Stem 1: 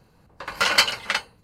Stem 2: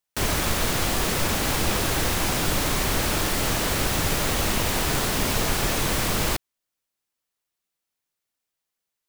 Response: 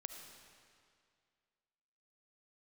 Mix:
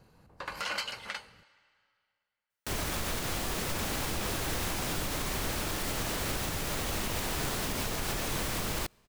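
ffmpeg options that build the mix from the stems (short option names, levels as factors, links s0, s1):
-filter_complex "[0:a]acompressor=threshold=0.0251:ratio=2,volume=0.596,asplit=2[s0][s1];[s1]volume=0.266[s2];[1:a]adelay=2500,volume=0.422,asplit=2[s3][s4];[s4]volume=0.075[s5];[2:a]atrim=start_sample=2205[s6];[s2][s5]amix=inputs=2:normalize=0[s7];[s7][s6]afir=irnorm=-1:irlink=0[s8];[s0][s3][s8]amix=inputs=3:normalize=0,alimiter=limit=0.075:level=0:latency=1:release=98"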